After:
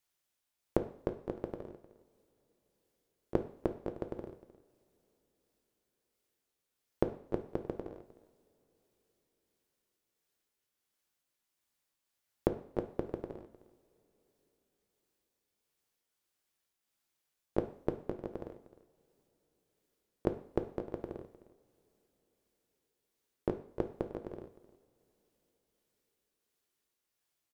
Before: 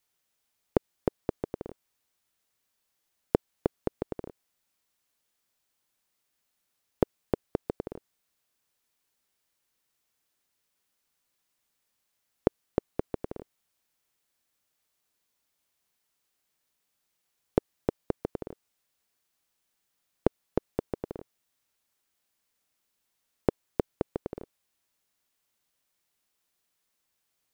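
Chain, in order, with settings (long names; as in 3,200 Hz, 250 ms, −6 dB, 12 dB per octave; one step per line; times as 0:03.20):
pitch shifter swept by a sawtooth +1 semitone, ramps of 807 ms
single-tap delay 307 ms −18 dB
coupled-rooms reverb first 0.52 s, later 4.7 s, from −28 dB, DRR 7 dB
level −5 dB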